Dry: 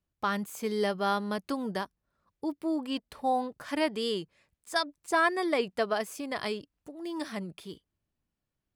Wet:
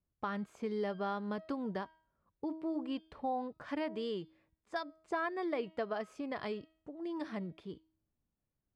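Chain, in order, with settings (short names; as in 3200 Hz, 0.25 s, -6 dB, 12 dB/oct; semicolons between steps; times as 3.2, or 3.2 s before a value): de-hum 318.8 Hz, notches 16; compressor 2:1, threshold -34 dBFS, peak gain reduction 7.5 dB; tape spacing loss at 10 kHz 23 dB; mismatched tape noise reduction decoder only; gain -1 dB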